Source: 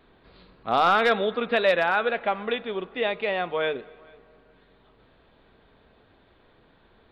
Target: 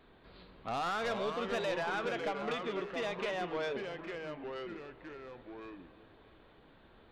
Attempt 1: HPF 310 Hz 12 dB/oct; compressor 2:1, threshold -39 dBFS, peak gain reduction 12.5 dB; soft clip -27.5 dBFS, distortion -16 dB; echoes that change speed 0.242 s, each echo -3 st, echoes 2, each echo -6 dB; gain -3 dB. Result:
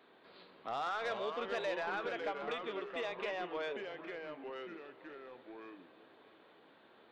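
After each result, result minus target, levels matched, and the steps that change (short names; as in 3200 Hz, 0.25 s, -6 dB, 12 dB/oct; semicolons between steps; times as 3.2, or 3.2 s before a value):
compressor: peak gain reduction +4.5 dB; 250 Hz band -3.0 dB
change: compressor 2:1, threshold -30 dBFS, peak gain reduction 8 dB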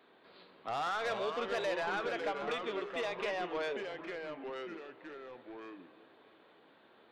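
250 Hz band -2.5 dB
remove: HPF 310 Hz 12 dB/oct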